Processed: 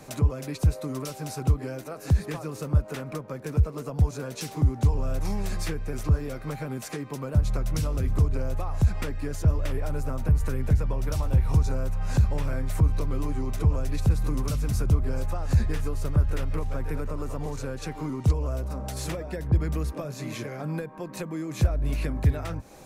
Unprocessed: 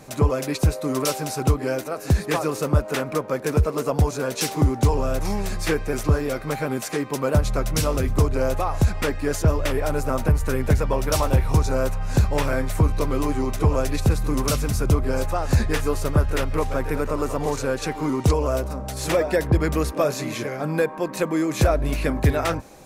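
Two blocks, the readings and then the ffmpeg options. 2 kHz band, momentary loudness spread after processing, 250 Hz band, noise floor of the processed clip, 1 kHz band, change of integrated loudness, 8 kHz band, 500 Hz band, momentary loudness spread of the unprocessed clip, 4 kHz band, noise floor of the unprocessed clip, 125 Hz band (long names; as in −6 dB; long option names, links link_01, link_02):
−11.0 dB, 9 LU, −7.0 dB, −41 dBFS, −11.5 dB, −5.0 dB, −10.0 dB, −12.0 dB, 5 LU, −10.0 dB, −35 dBFS, −2.0 dB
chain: -filter_complex "[0:a]acrossover=split=190[link_01][link_02];[link_02]acompressor=threshold=-32dB:ratio=10[link_03];[link_01][link_03]amix=inputs=2:normalize=0,volume=-1.5dB"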